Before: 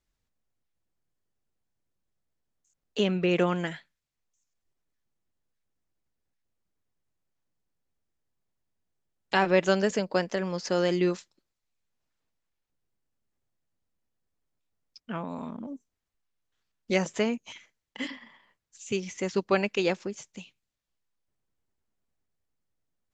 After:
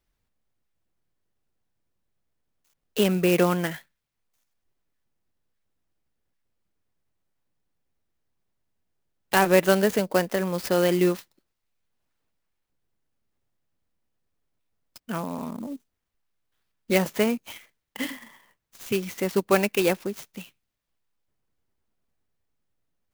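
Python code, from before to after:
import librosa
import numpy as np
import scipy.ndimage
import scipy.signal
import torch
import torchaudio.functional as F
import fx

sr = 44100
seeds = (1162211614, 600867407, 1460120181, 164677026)

y = fx.clock_jitter(x, sr, seeds[0], jitter_ms=0.035)
y = F.gain(torch.from_numpy(y), 4.0).numpy()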